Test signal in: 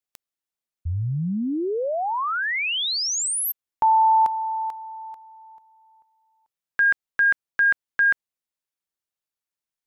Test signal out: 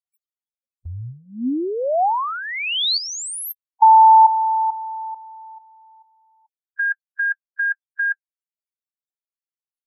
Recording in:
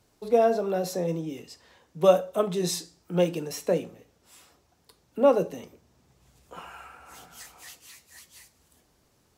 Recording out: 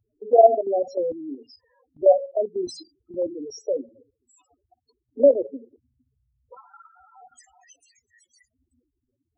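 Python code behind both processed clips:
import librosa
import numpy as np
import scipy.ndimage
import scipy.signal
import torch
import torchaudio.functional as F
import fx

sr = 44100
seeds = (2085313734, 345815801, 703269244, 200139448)

y = fx.spec_topn(x, sr, count=4)
y = fx.level_steps(y, sr, step_db=10)
y = fx.curve_eq(y, sr, hz=(120.0, 170.0, 250.0, 440.0, 760.0, 1600.0, 3900.0), db=(0, -22, 10, 5, 14, 0, 11))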